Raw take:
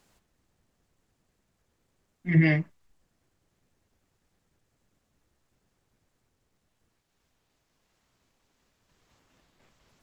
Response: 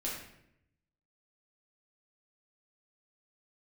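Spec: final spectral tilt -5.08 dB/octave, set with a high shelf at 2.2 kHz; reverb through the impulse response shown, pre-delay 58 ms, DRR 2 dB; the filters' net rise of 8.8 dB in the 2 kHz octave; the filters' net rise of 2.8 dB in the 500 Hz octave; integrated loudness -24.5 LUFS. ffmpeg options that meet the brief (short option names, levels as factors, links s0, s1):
-filter_complex "[0:a]equalizer=f=500:t=o:g=3.5,equalizer=f=2000:t=o:g=7,highshelf=f=2200:g=4.5,asplit=2[s0][s1];[1:a]atrim=start_sample=2205,adelay=58[s2];[s1][s2]afir=irnorm=-1:irlink=0,volume=0.596[s3];[s0][s3]amix=inputs=2:normalize=0,volume=0.562"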